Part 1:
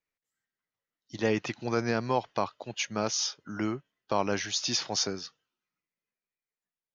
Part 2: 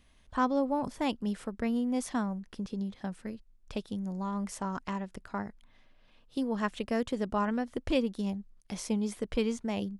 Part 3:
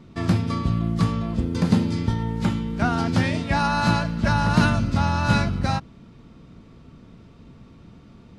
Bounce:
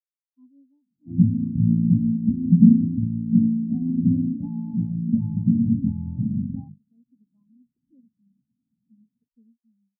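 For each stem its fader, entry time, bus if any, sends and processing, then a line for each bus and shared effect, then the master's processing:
-10.0 dB, 0.00 s, muted 2.08–3.65, no send, dry
-11.0 dB, 0.00 s, no send, spectral gate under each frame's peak -10 dB strong
+2.0 dB, 0.90 s, no send, notches 50/100/150/200/250/300/350/400/450 Hz; limiter -14.5 dBFS, peak gain reduction 8.5 dB; running mean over 29 samples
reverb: off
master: graphic EQ 125/250/4000 Hz +5/+12/+4 dB; spectral expander 2.5:1

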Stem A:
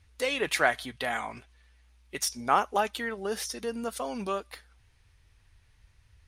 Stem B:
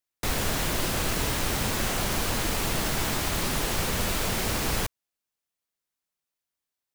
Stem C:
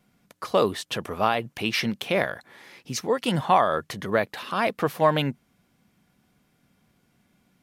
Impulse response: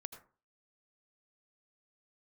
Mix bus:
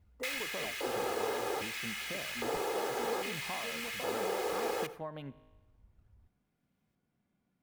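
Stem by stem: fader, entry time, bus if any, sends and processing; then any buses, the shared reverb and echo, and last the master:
0.0 dB, 0.00 s, bus A, no send, polynomial smoothing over 65 samples; decimation with a swept rate 19×, swing 160% 3.2 Hz
+0.5 dB, 0.00 s, no bus, send -9.5 dB, LFO high-pass square 0.62 Hz 490–2200 Hz; comb 2.4 ms, depth 65%; auto duck -12 dB, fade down 0.50 s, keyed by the first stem
-10.5 dB, 0.00 s, bus A, send -19 dB, dry
bus A: 0.0 dB, resonator 52 Hz, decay 1.1 s, harmonics all, mix 40%; compressor 6:1, threshold -40 dBFS, peak gain reduction 14.5 dB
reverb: on, RT60 0.40 s, pre-delay 72 ms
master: high shelf 2200 Hz -10.5 dB

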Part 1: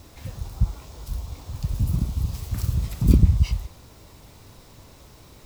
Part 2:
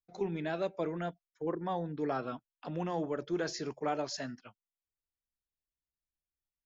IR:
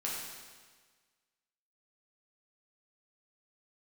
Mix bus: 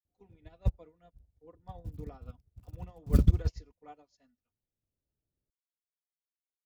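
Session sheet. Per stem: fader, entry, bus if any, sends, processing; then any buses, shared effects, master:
+1.0 dB, 0.05 s, no send, Wiener smoothing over 41 samples; auto duck -6 dB, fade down 1.10 s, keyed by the second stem
+0.5 dB, 0.00 s, no send, notch 1600 Hz, Q 5.2; comb 4.1 ms, depth 55%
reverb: off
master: upward expander 2.5:1, over -42 dBFS

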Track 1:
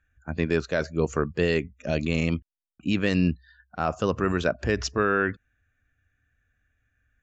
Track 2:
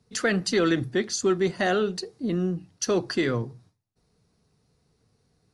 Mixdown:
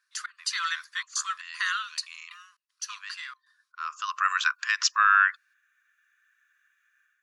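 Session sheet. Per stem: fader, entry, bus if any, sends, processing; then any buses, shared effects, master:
+1.5 dB, 0.00 s, no send, auto duck -18 dB, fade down 0.25 s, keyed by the second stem
2.27 s -4.5 dB -> 2.82 s -13 dB, 0.00 s, no send, step gate "xx.xxxxx." 117 bpm -24 dB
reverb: off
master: AGC gain up to 7.5 dB; brick-wall FIR high-pass 990 Hz; bell 2300 Hz -2.5 dB 0.77 oct

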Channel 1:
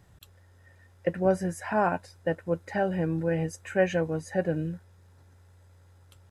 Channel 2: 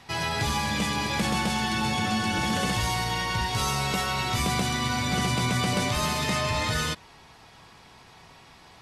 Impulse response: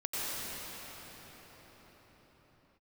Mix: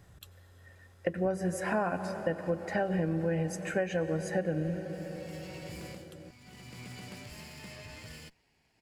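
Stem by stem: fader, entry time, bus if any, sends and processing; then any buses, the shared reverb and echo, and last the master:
+1.0 dB, 0.00 s, send -18.5 dB, notch 900 Hz, Q 9.1; de-hum 48.5 Hz, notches 8
-19.0 dB, 1.35 s, no send, minimum comb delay 0.41 ms; auto duck -14 dB, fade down 0.20 s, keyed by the first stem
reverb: on, pre-delay 84 ms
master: compressor 12:1, threshold -26 dBFS, peak gain reduction 11 dB

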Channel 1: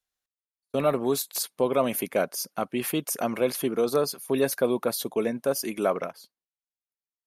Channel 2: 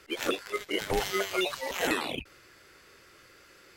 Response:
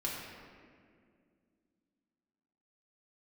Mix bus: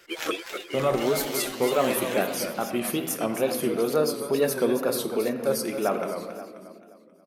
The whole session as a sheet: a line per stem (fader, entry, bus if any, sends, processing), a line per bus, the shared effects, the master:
-3.5 dB, 0.00 s, send -5.5 dB, echo send -6.5 dB, dry
+1.0 dB, 0.00 s, no send, echo send -8.5 dB, low shelf 230 Hz -9.5 dB; comb 6 ms, depth 46%; auto duck -7 dB, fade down 0.25 s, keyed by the first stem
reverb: on, RT60 2.2 s, pre-delay 5 ms
echo: feedback echo 0.265 s, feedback 45%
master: wow and flutter 87 cents

